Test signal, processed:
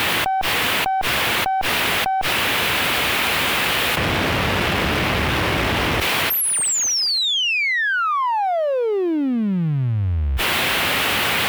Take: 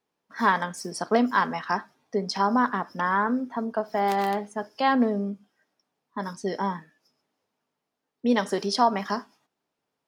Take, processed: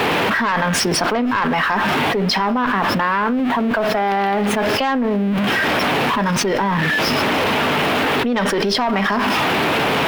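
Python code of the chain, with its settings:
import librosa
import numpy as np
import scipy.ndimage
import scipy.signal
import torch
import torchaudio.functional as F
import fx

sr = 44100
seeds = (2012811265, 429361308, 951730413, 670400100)

y = x + 0.5 * 10.0 ** (-33.0 / 20.0) * np.sign(x)
y = fx.high_shelf_res(y, sr, hz=4200.0, db=-13.5, q=1.5)
y = fx.rider(y, sr, range_db=5, speed_s=2.0)
y = fx.dynamic_eq(y, sr, hz=5400.0, q=2.9, threshold_db=-53.0, ratio=4.0, max_db=4)
y = scipy.signal.sosfilt(scipy.signal.butter(4, 56.0, 'highpass', fs=sr, output='sos'), y)
y = fx.tube_stage(y, sr, drive_db=13.0, bias=0.5)
y = fx.env_flatten(y, sr, amount_pct=100)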